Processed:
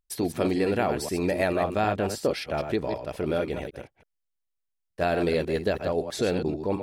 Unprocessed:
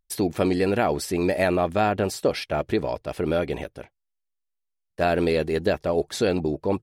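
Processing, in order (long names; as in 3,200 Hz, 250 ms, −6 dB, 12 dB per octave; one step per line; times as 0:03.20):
delay that plays each chunk backwards 109 ms, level −7.5 dB
level −3.5 dB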